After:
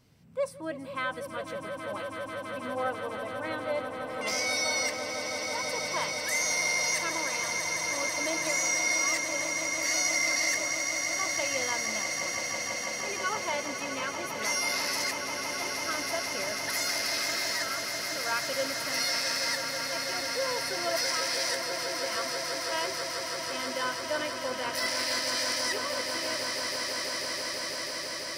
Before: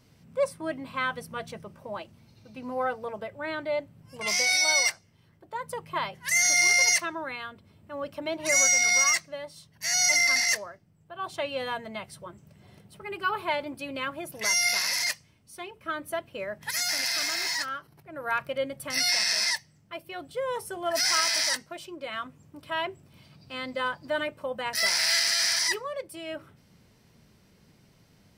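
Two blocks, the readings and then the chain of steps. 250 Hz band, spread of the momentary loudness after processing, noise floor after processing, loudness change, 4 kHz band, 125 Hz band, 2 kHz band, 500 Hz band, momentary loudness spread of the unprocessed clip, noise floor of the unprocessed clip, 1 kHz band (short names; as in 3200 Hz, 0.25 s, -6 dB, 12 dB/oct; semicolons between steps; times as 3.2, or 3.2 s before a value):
+0.5 dB, 8 LU, -38 dBFS, -4.0 dB, -2.5 dB, 0.0 dB, -2.5 dB, 0.0 dB, 19 LU, -61 dBFS, -0.5 dB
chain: limiter -18 dBFS, peak gain reduction 7 dB; swelling echo 0.164 s, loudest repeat 8, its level -10 dB; gain -3.5 dB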